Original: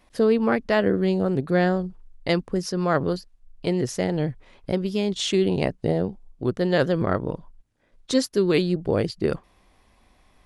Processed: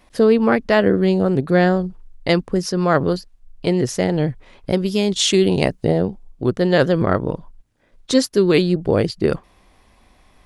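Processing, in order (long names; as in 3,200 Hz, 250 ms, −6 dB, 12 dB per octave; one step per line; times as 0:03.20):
0:04.71–0:05.83: high-shelf EQ 5,600 Hz → 3,900 Hz +8 dB
level +5.5 dB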